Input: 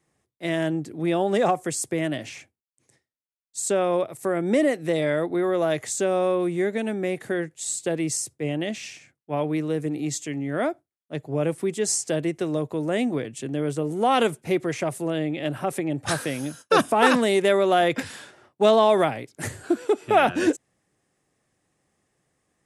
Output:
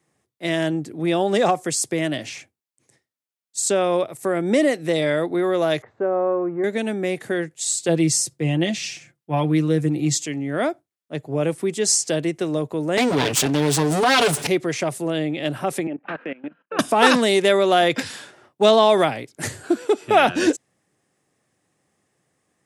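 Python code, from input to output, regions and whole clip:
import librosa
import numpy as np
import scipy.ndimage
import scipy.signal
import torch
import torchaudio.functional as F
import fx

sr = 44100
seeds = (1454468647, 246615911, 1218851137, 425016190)

y = fx.chain(x, sr, fx.law_mismatch(coded='A'),
    fx.lowpass(hz=1400.0, slope=24),
    fx.peak_eq(hz=200.0, db=-7.5, octaves=0.69), at=(5.82, 6.64))
y = fx.chain(y, sr, fx.low_shelf(hz=130.0, db=11.0),
    fx.comb(ms=5.8, depth=0.57), at=(7.88, 10.26))
y = fx.chain(y, sr, fx.lower_of_two(delay_ms=7.0),
    fx.tilt_shelf(db=-3.5, hz=670.0),
    fx.env_flatten(amount_pct=70), at=(12.97, 14.47))
y = fx.chain(y, sr, fx.cheby1_bandpass(low_hz=180.0, high_hz=2700.0, order=4),
    fx.level_steps(step_db=15),
    fx.transient(attack_db=-1, sustain_db=-6), at=(15.87, 16.79))
y = scipy.signal.sosfilt(scipy.signal.butter(2, 92.0, 'highpass', fs=sr, output='sos'), y)
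y = fx.dynamic_eq(y, sr, hz=4700.0, q=1.0, threshold_db=-45.0, ratio=4.0, max_db=7)
y = y * librosa.db_to_amplitude(2.5)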